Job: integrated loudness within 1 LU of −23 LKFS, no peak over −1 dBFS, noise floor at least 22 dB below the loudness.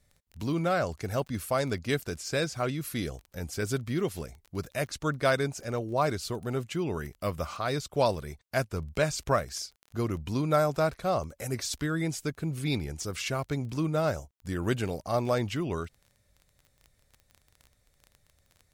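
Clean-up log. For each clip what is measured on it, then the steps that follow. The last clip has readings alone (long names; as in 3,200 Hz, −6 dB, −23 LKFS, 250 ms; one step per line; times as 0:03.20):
crackle rate 20 per second; integrated loudness −31.0 LKFS; sample peak −12.0 dBFS; target loudness −23.0 LKFS
→ click removal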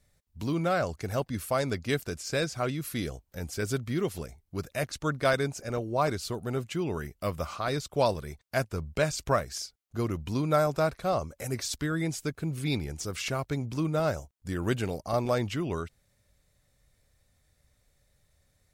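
crackle rate 0.21 per second; integrated loudness −31.0 LKFS; sample peak −12.0 dBFS; target loudness −23.0 LKFS
→ level +8 dB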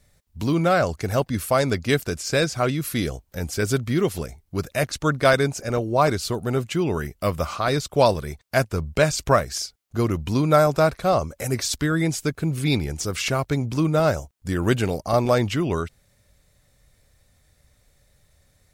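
integrated loudness −23.0 LKFS; sample peak −4.0 dBFS; background noise floor −64 dBFS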